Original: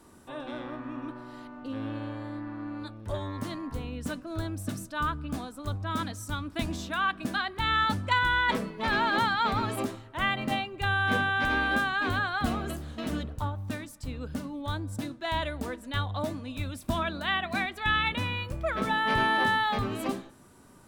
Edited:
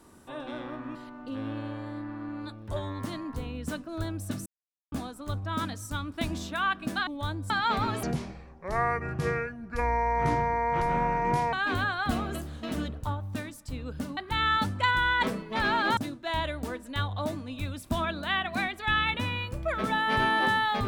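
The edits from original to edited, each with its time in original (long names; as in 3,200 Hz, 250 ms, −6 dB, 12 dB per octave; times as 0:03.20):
0:00.95–0:01.33: remove
0:04.84–0:05.30: silence
0:07.45–0:09.25: swap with 0:14.52–0:14.95
0:09.78–0:11.88: play speed 60%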